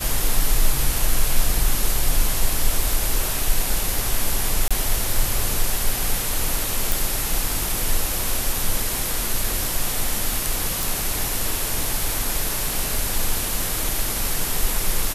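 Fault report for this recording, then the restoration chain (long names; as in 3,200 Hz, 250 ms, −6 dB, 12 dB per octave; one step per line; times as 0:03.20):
0:04.68–0:04.71: drop-out 26 ms
0:06.92: click
0:10.83: click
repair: click removal
repair the gap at 0:04.68, 26 ms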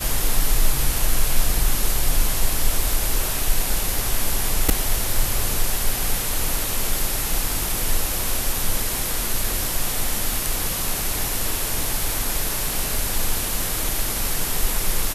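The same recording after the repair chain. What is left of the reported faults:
none of them is left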